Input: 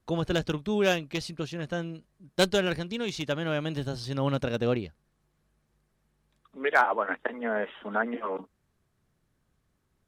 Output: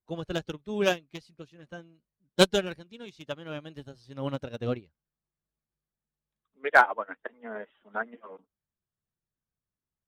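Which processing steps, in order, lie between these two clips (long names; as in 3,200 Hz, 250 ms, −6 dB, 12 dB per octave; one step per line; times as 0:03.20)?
spectral magnitudes quantised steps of 15 dB
expander for the loud parts 2.5 to 1, over −36 dBFS
level +5.5 dB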